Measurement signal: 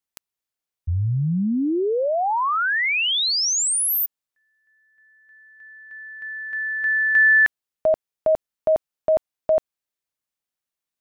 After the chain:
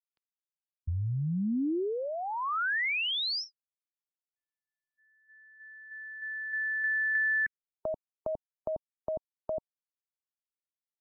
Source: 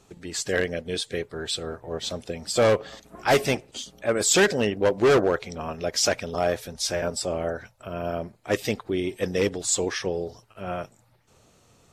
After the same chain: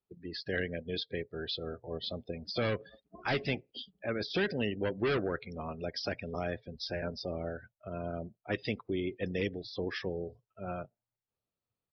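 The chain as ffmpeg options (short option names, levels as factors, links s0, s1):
-filter_complex "[0:a]acrossover=split=340|1400[s0][s1][s2];[s0]acompressor=threshold=0.0562:ratio=4[s3];[s1]acompressor=threshold=0.02:ratio=4[s4];[s2]acompressor=threshold=0.0501:ratio=4[s5];[s3][s4][s5]amix=inputs=3:normalize=0,afftdn=nr=30:nf=-37,aresample=11025,aresample=44100,volume=0.562"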